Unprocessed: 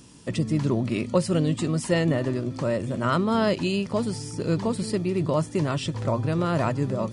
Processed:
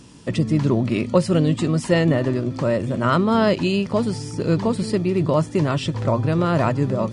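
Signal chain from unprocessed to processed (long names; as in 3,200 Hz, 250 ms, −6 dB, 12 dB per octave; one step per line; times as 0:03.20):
high-shelf EQ 8,500 Hz −11 dB
level +5 dB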